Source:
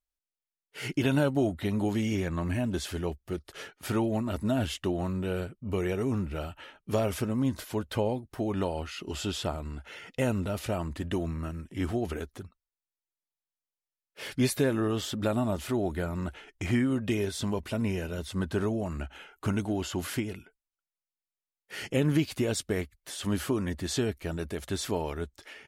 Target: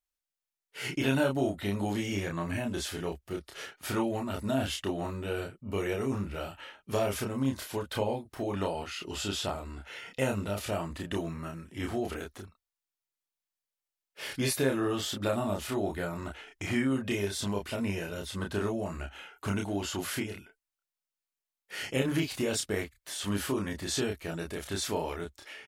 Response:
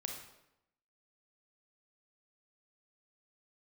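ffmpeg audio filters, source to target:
-filter_complex "[0:a]lowshelf=frequency=440:gain=-6.5,asplit=2[link_01][link_02];[link_02]adelay=30,volume=-3dB[link_03];[link_01][link_03]amix=inputs=2:normalize=0"

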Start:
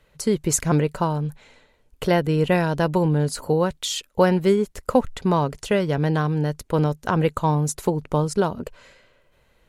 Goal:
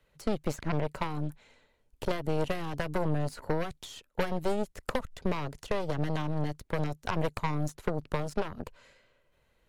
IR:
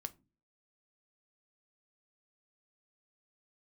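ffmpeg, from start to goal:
-filter_complex "[0:a]acrossover=split=130|1600|4000[link_01][link_02][link_03][link_04];[link_01]acompressor=threshold=-33dB:ratio=4[link_05];[link_02]acompressor=threshold=-21dB:ratio=4[link_06];[link_03]acompressor=threshold=-42dB:ratio=4[link_07];[link_04]acompressor=threshold=-44dB:ratio=4[link_08];[link_05][link_06][link_07][link_08]amix=inputs=4:normalize=0,aeval=exprs='0.447*(cos(1*acos(clip(val(0)/0.447,-1,1)))-cos(1*PI/2))+0.112*(cos(8*acos(clip(val(0)/0.447,-1,1)))-cos(8*PI/2))':channel_layout=same,volume=-9dB"

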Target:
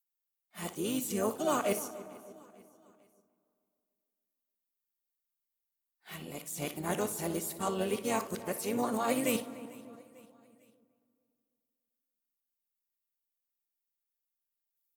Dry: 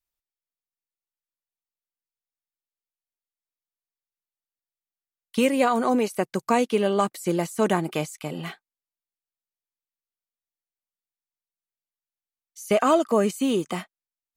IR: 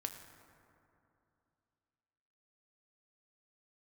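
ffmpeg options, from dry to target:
-filter_complex "[0:a]areverse,flanger=delay=6.7:depth=7.5:regen=83:speed=1.1:shape=triangular,asplit=2[link_01][link_02];[link_02]aecho=0:1:429|858|1287:0.0708|0.034|0.0163[link_03];[link_01][link_03]amix=inputs=2:normalize=0,tremolo=f=110:d=0.261,asplit=3[link_04][link_05][link_06];[link_05]asetrate=22050,aresample=44100,atempo=2,volume=-16dB[link_07];[link_06]asetrate=52444,aresample=44100,atempo=0.840896,volume=-9dB[link_08];[link_04][link_07][link_08]amix=inputs=3:normalize=0,aemphasis=mode=production:type=bsi,asplit=2[link_09][link_10];[link_10]adelay=284,lowpass=frequency=1200:poles=1,volume=-15dB,asplit=2[link_11][link_12];[link_12]adelay=284,lowpass=frequency=1200:poles=1,volume=0.54,asplit=2[link_13][link_14];[link_14]adelay=284,lowpass=frequency=1200:poles=1,volume=0.54,asplit=2[link_15][link_16];[link_16]adelay=284,lowpass=frequency=1200:poles=1,volume=0.54,asplit=2[link_17][link_18];[link_18]adelay=284,lowpass=frequency=1200:poles=1,volume=0.54[link_19];[link_09][link_11][link_13][link_15][link_17][link_19]amix=inputs=6:normalize=0,asetrate=42336,aresample=44100,lowshelf=frequency=250:gain=8.5,asplit=2[link_20][link_21];[1:a]atrim=start_sample=2205,adelay=59[link_22];[link_21][link_22]afir=irnorm=-1:irlink=0,volume=-11.5dB[link_23];[link_20][link_23]amix=inputs=2:normalize=0,volume=-6dB"

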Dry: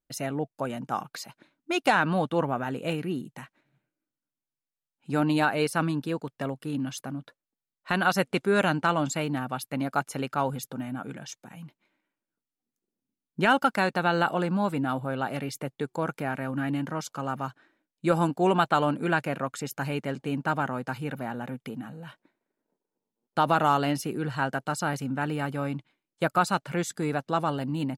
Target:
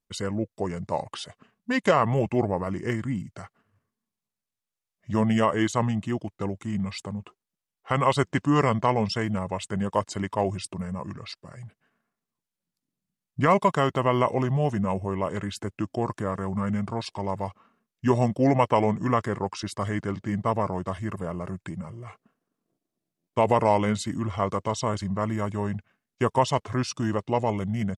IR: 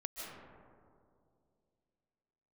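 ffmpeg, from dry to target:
-af "asetrate=32097,aresample=44100,atempo=1.37395,volume=2dB"

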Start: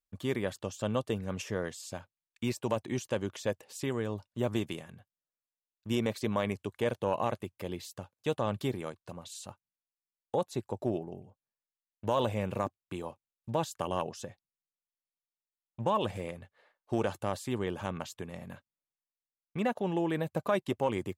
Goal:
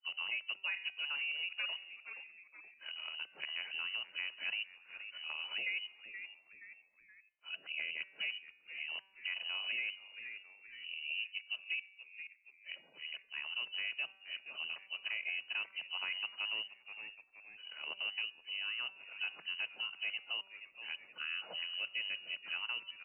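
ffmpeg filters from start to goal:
ffmpeg -i in.wav -filter_complex "[0:a]areverse,bandreject=frequency=207.3:width_type=h:width=4,bandreject=frequency=414.6:width_type=h:width=4,bandreject=frequency=621.9:width_type=h:width=4,bandreject=frequency=829.2:width_type=h:width=4,bandreject=frequency=1036.5:width_type=h:width=4,bandreject=frequency=1243.8:width_type=h:width=4,bandreject=frequency=1451.1:width_type=h:width=4,bandreject=frequency=1658.4:width_type=h:width=4,bandreject=frequency=1865.7:width_type=h:width=4,bandreject=frequency=2073:width_type=h:width=4,bandreject=frequency=2280.3:width_type=h:width=4,bandreject=frequency=2487.6:width_type=h:width=4,bandreject=frequency=2694.9:width_type=h:width=4,bandreject=frequency=2902.2:width_type=h:width=4,bandreject=frequency=3109.5:width_type=h:width=4,bandreject=frequency=3316.8:width_type=h:width=4,bandreject=frequency=3524.1:width_type=h:width=4,bandreject=frequency=3731.4:width_type=h:width=4,bandreject=frequency=3938.7:width_type=h:width=4,bandreject=frequency=4146:width_type=h:width=4,bandreject=frequency=4353.3:width_type=h:width=4,bandreject=frequency=4560.6:width_type=h:width=4,bandreject=frequency=4767.9:width_type=h:width=4,bandreject=frequency=4975.2:width_type=h:width=4,bandreject=frequency=5182.5:width_type=h:width=4,bandreject=frequency=5389.8:width_type=h:width=4,bandreject=frequency=5597.1:width_type=h:width=4,bandreject=frequency=5804.4:width_type=h:width=4,bandreject=frequency=6011.7:width_type=h:width=4,bandreject=frequency=6219:width_type=h:width=4,bandreject=frequency=6426.3:width_type=h:width=4,bandreject=frequency=6633.6:width_type=h:width=4,lowpass=frequency=2700:width_type=q:width=0.5098,lowpass=frequency=2700:width_type=q:width=0.6013,lowpass=frequency=2700:width_type=q:width=0.9,lowpass=frequency=2700:width_type=q:width=2.563,afreqshift=-3200,asetrate=40517,aresample=44100,afreqshift=120,asplit=2[link_01][link_02];[link_02]asplit=3[link_03][link_04][link_05];[link_03]adelay=474,afreqshift=-120,volume=-20dB[link_06];[link_04]adelay=948,afreqshift=-240,volume=-27.5dB[link_07];[link_05]adelay=1422,afreqshift=-360,volume=-35.1dB[link_08];[link_06][link_07][link_08]amix=inputs=3:normalize=0[link_09];[link_01][link_09]amix=inputs=2:normalize=0,acompressor=threshold=-42dB:ratio=2.5,equalizer=frequency=110:width=3.5:gain=-13.5,volume=1dB" out.wav

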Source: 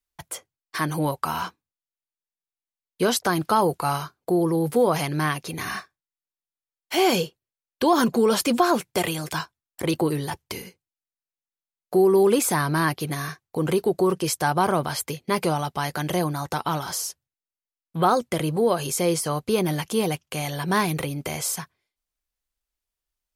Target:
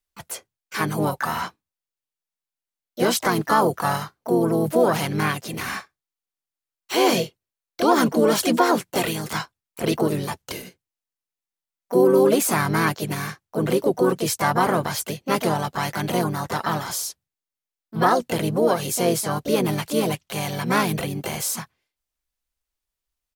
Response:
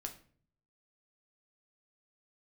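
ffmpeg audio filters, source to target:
-filter_complex "[0:a]asplit=3[link_01][link_02][link_03];[link_02]asetrate=33038,aresample=44100,atempo=1.33484,volume=-10dB[link_04];[link_03]asetrate=58866,aresample=44100,atempo=0.749154,volume=-5dB[link_05];[link_01][link_04][link_05]amix=inputs=3:normalize=0"

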